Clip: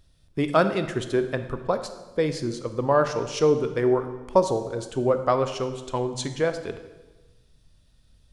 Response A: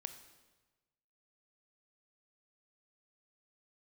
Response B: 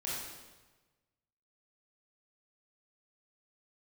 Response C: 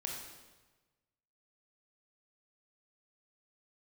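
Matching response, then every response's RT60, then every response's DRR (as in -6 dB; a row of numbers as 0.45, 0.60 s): A; 1.2, 1.2, 1.2 s; 8.5, -7.5, -1.0 dB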